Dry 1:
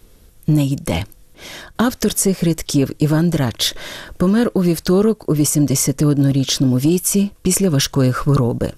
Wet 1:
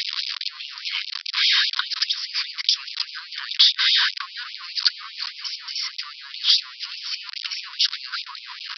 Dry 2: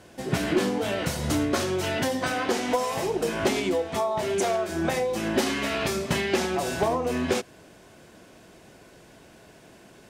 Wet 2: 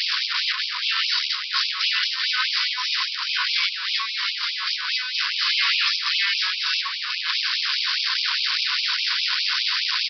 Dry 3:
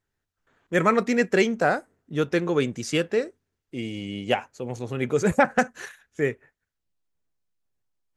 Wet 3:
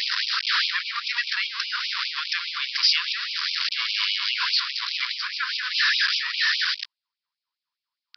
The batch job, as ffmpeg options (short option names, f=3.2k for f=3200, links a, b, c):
-af "aeval=exprs='val(0)+0.5*0.133*sgn(val(0))':c=same,acompressor=threshold=-19dB:ratio=16,bass=f=250:g=4,treble=f=4k:g=15,aresample=11025,aresample=44100,afftfilt=real='re*gte(b*sr/1024,930*pow(2300/930,0.5+0.5*sin(2*PI*4.9*pts/sr)))':imag='im*gte(b*sr/1024,930*pow(2300/930,0.5+0.5*sin(2*PI*4.9*pts/sr)))':win_size=1024:overlap=0.75,volume=2dB"